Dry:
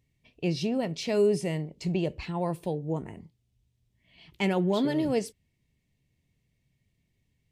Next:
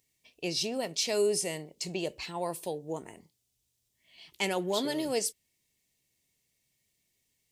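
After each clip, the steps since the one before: tone controls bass -14 dB, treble +14 dB; gain -1.5 dB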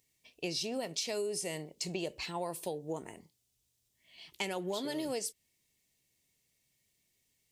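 compressor 12:1, threshold -32 dBFS, peak gain reduction 9.5 dB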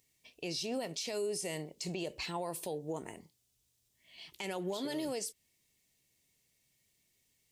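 limiter -30 dBFS, peak gain reduction 10 dB; gain +1.5 dB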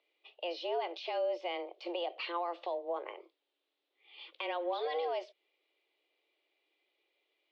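mistuned SSB +170 Hz 180–3500 Hz; gain +2.5 dB

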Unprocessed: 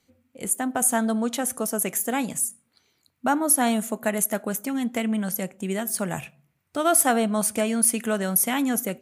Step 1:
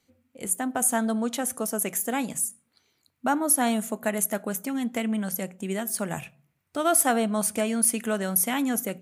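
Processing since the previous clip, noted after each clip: notches 60/120/180 Hz; gain -2 dB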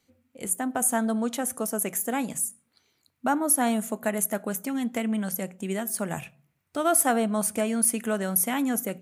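dynamic EQ 4000 Hz, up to -4 dB, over -40 dBFS, Q 0.82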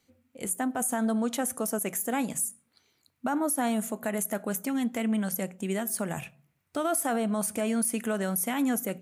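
limiter -19.5 dBFS, peak gain reduction 11 dB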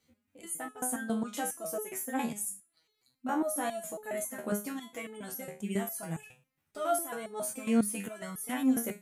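stepped resonator 7.3 Hz 77–430 Hz; gain +6 dB

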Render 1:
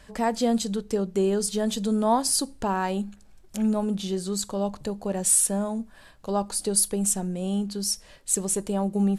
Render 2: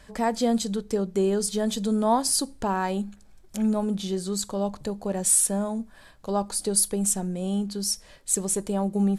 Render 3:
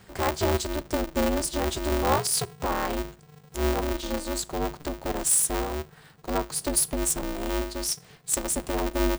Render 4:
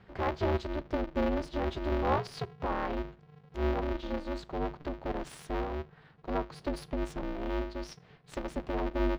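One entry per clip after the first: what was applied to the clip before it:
notch 2800 Hz, Q 16
polarity switched at an audio rate 150 Hz; gain -1.5 dB
air absorption 300 m; gain -4 dB

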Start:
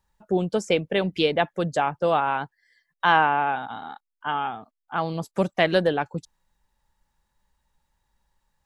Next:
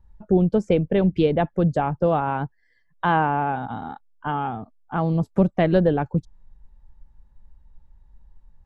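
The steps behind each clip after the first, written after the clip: tilt -4.5 dB/oct; in parallel at 0 dB: compressor, threshold -26 dBFS, peak gain reduction 15.5 dB; on the sum: gain -4.5 dB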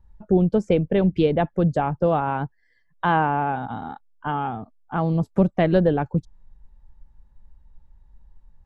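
nothing audible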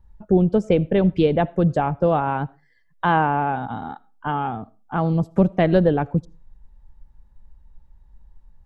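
reverb RT60 0.30 s, pre-delay 40 ms, DRR 22.5 dB; gain +1.5 dB

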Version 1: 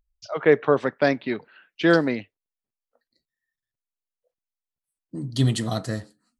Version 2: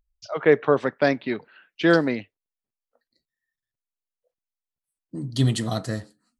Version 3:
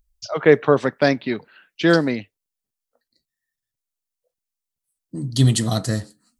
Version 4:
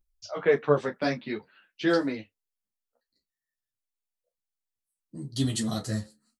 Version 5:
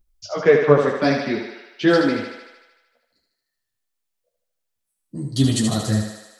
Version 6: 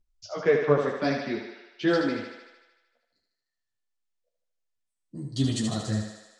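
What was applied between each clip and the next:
nothing audible
tone controls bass +4 dB, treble +8 dB; vocal rider within 3 dB 2 s; gain +2.5 dB
doubler 28 ms -11.5 dB; ensemble effect; gain -6 dB
low shelf 360 Hz +4 dB; on a send: thinning echo 76 ms, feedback 67%, high-pass 330 Hz, level -5 dB; on the sum: gain +6.5 dB
LPF 8300 Hz 24 dB/oct; resonator 350 Hz, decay 0.97 s, mix 60%

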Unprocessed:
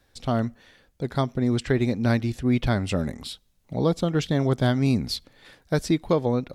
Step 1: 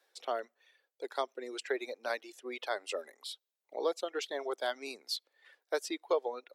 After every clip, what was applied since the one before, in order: steep high-pass 390 Hz 36 dB/oct; reverb removal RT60 1.9 s; gain -6 dB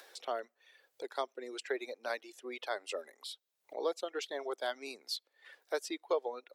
upward compressor, threshold -41 dBFS; gain -2 dB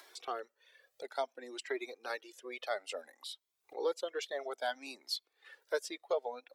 cascading flanger rising 0.59 Hz; gain +4 dB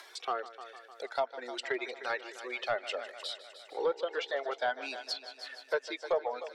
multi-head echo 0.152 s, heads first and second, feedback 58%, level -17 dB; overdrive pedal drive 11 dB, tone 5100 Hz, clips at -19 dBFS; treble ducked by the level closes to 2100 Hz, closed at -28.5 dBFS; gain +1.5 dB

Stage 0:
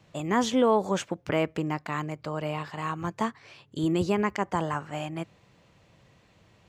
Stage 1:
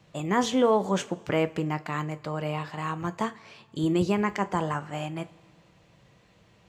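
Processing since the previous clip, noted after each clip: two-slope reverb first 0.26 s, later 1.8 s, from -18 dB, DRR 10.5 dB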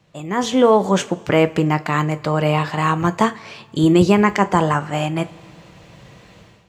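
AGC gain up to 15 dB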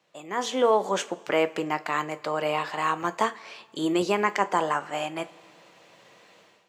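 HPF 400 Hz 12 dB/oct; gain -6 dB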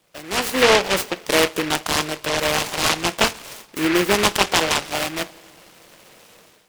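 noise-modulated delay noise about 1800 Hz, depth 0.22 ms; gain +6 dB

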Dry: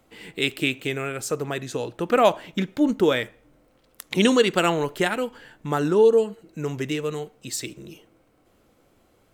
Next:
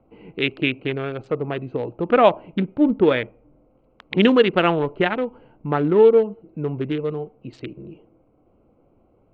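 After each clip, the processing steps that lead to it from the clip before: Wiener smoothing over 25 samples; LPF 3200 Hz 24 dB/oct; gain +3.5 dB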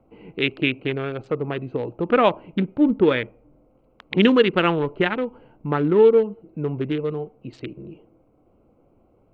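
dynamic EQ 680 Hz, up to -6 dB, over -32 dBFS, Q 2.6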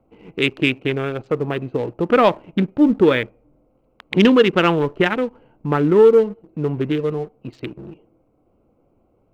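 sample leveller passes 1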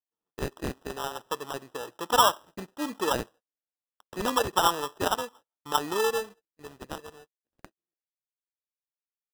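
band-pass sweep 1200 Hz -> 4600 Hz, 5.96–7.38; sample-and-hold 20×; gate -50 dBFS, range -34 dB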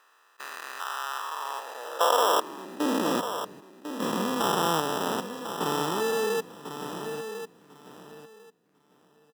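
stepped spectrum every 0.4 s; high-pass sweep 1200 Hz -> 180 Hz, 1.16–3.19; feedback echo 1.048 s, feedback 18%, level -9.5 dB; gain +4.5 dB

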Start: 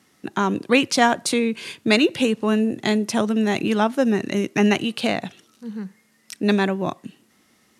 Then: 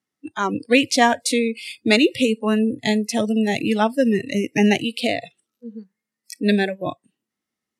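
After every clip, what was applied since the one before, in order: spectral noise reduction 26 dB; gain +1.5 dB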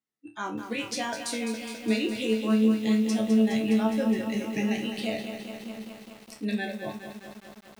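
limiter -9.5 dBFS, peak gain reduction 8 dB; resonator bank D2 fifth, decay 0.28 s; lo-fi delay 0.207 s, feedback 80%, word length 8-bit, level -8.5 dB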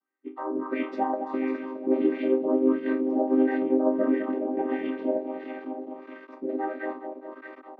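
chord vocoder minor triad, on C4; LFO low-pass sine 1.5 Hz 690–1800 Hz; mismatched tape noise reduction encoder only

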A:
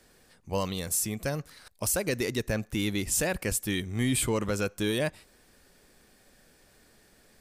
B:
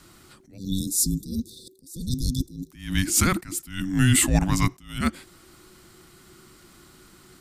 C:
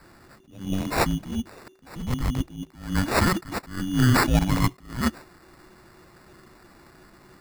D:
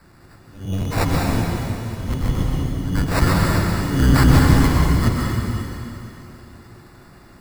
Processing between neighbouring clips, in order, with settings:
spectral delete 0.57–2.71, 920–3800 Hz; frequency shift -380 Hz; attack slew limiter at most 120 dB/s; gain +8.5 dB
sample-and-hold 14×
octaver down 1 oct, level +4 dB; plate-style reverb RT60 3 s, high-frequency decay 1×, pre-delay 0.115 s, DRR -2.5 dB; gain -1 dB

